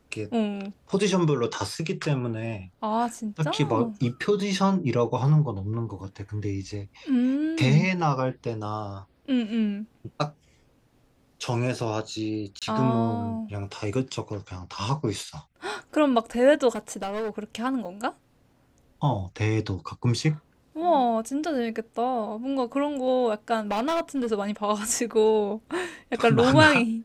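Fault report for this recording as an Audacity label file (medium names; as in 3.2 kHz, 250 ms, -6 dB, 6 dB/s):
12.590000	12.620000	dropout 27 ms
16.720000	17.300000	clipped -26.5 dBFS
17.850000	17.850000	dropout 4.2 ms
23.710000	24.270000	clipped -22 dBFS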